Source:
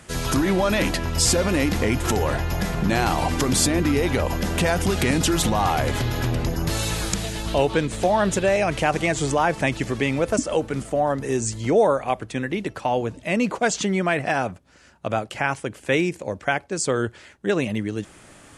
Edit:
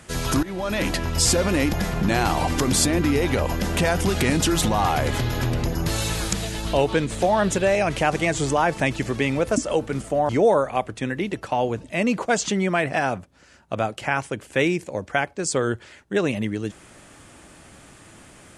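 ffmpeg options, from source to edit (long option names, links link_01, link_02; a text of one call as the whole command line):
ffmpeg -i in.wav -filter_complex "[0:a]asplit=4[link_01][link_02][link_03][link_04];[link_01]atrim=end=0.43,asetpts=PTS-STARTPTS,afade=type=out:start_time=0.426:duration=0.004:curve=hsin:silence=0.141254[link_05];[link_02]atrim=start=0.43:end=1.732,asetpts=PTS-STARTPTS,afade=type=in:duration=0.53:silence=0.141254[link_06];[link_03]atrim=start=2.538:end=11.102[link_07];[link_04]atrim=start=11.618[link_08];[link_05][link_06]concat=n=2:v=0:a=1[link_09];[link_09][link_07]acrossfade=duration=0.004:curve1=hsin:curve2=hsin[link_10];[link_10][link_08]acrossfade=duration=0.004:curve1=hsin:curve2=hsin" out.wav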